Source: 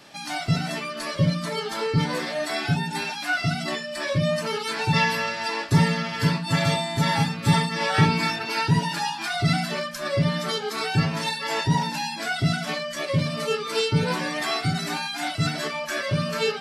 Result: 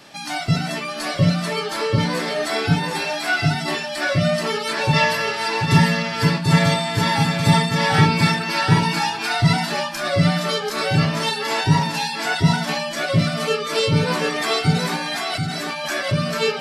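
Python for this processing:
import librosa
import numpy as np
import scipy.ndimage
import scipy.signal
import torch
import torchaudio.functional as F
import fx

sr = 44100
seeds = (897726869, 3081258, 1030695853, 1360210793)

p1 = fx.over_compress(x, sr, threshold_db=-34.0, ratio=-1.0, at=(14.96, 15.88))
p2 = p1 + fx.echo_single(p1, sr, ms=737, db=-4.5, dry=0)
y = F.gain(torch.from_numpy(p2), 3.5).numpy()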